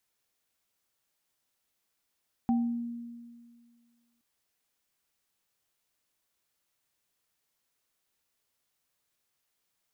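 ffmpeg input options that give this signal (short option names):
-f lavfi -i "aevalsrc='0.0794*pow(10,-3*t/1.93)*sin(2*PI*236*t)+0.0282*pow(10,-3*t/0.42)*sin(2*PI*776*t)':d=1.72:s=44100"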